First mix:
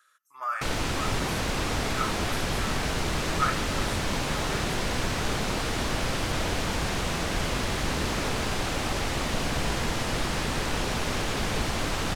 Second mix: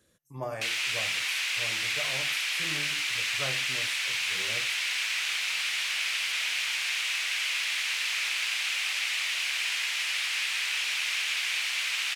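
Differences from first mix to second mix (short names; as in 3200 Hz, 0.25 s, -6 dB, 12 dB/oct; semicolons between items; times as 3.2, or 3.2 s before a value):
speech: remove resonant high-pass 1300 Hz, resonance Q 13; background: add resonant high-pass 2400 Hz, resonance Q 2.7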